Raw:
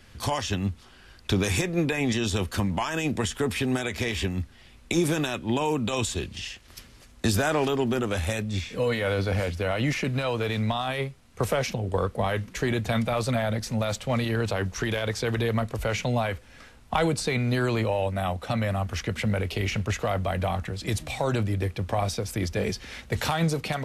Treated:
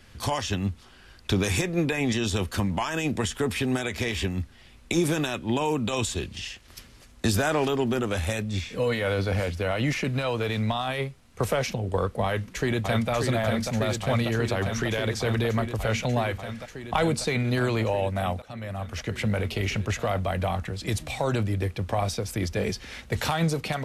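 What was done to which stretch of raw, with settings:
0:12.25–0:13.11: delay throw 590 ms, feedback 85%, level −4.5 dB
0:18.42–0:19.25: fade in, from −17.5 dB

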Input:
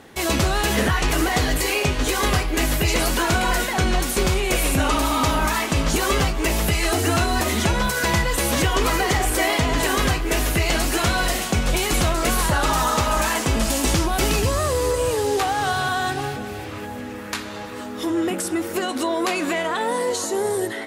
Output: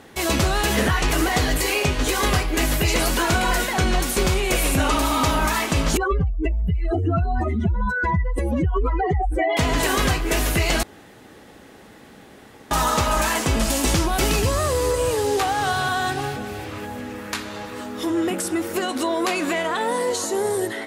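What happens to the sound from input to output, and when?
0:05.97–0:09.57: expanding power law on the bin magnitudes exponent 2.9
0:10.83–0:12.71: fill with room tone

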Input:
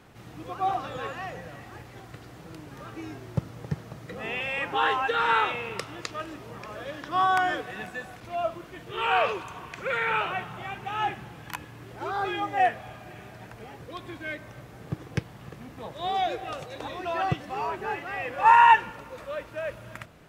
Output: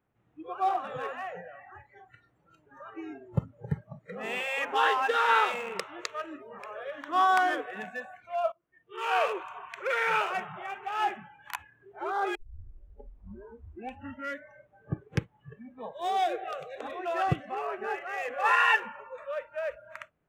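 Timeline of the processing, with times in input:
0:08.52–0:09.45: fade in, from −21 dB
0:12.35: tape start 2.13 s
0:16.04–0:18.80: Butterworth band-reject 930 Hz, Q 5.5
whole clip: adaptive Wiener filter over 9 samples; noise reduction from a noise print of the clip's start 24 dB

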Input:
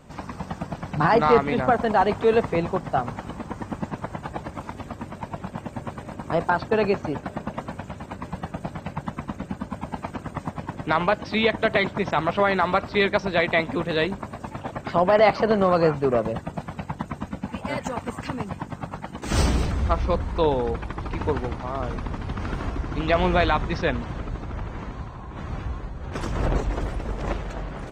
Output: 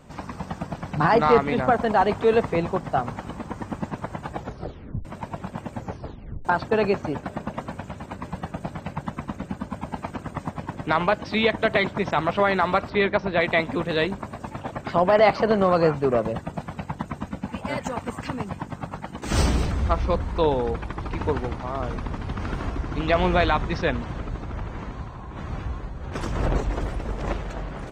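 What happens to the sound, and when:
0:04.35: tape stop 0.70 s
0:05.75: tape stop 0.70 s
0:12.90–0:13.41: Bessel low-pass filter 2,900 Hz

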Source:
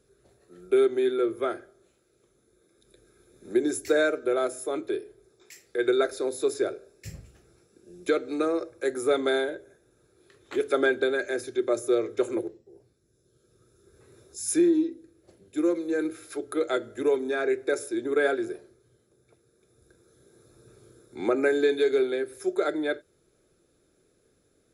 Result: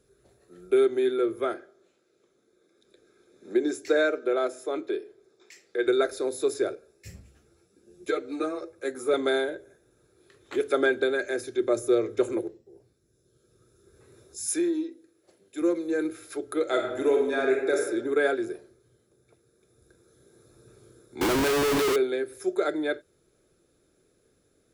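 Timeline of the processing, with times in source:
0:01.54–0:05.87: three-way crossover with the lows and the highs turned down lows −18 dB, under 170 Hz, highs −16 dB, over 7,400 Hz
0:06.75–0:09.14: string-ensemble chorus
0:11.60–0:12.33: low-shelf EQ 190 Hz +7 dB
0:14.46–0:15.62: high-pass filter 520 Hz 6 dB per octave
0:16.62–0:17.80: thrown reverb, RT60 1.1 s, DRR 1.5 dB
0:21.21–0:21.96: comparator with hysteresis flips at −39.5 dBFS

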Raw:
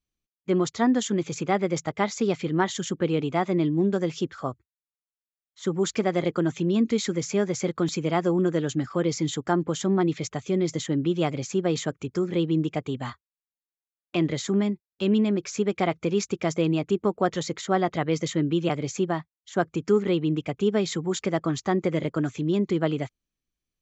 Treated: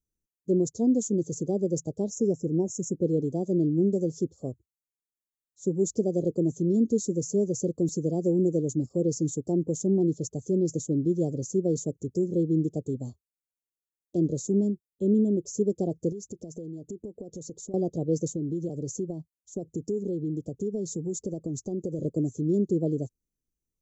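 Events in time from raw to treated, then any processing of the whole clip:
0:02.09–0:03.01: time-frequency box erased 1,000–5,000 Hz
0:14.88–0:15.46: Butterworth band-reject 5,200 Hz, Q 1.5
0:16.12–0:17.74: downward compressor 10 to 1, threshold −33 dBFS
0:18.32–0:21.99: downward compressor 4 to 1, threshold −26 dBFS
whole clip: Chebyshev band-stop filter 500–6,400 Hz, order 3

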